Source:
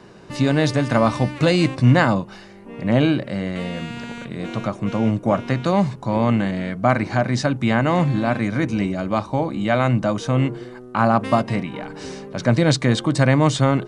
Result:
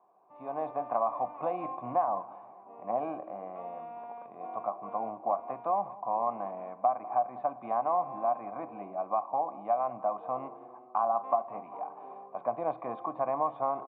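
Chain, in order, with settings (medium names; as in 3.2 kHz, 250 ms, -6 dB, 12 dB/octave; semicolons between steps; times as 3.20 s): cascade formant filter a; compression 3:1, threshold -31 dBFS, peak gain reduction 9 dB; feedback delay 196 ms, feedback 57%, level -19 dB; on a send at -16 dB: reverberation RT60 0.65 s, pre-delay 3 ms; on the sum: level rider gain up to 11 dB; high-pass 280 Hz 12 dB/octave; trim -5.5 dB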